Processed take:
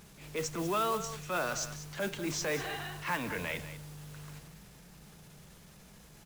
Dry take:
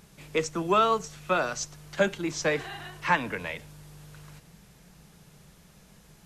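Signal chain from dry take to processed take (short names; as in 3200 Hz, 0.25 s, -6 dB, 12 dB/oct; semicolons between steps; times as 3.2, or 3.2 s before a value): compressor 5:1, threshold -28 dBFS, peak gain reduction 10 dB; transient shaper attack -8 dB, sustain +3 dB; modulation noise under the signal 15 dB; on a send: echo 0.193 s -12.5 dB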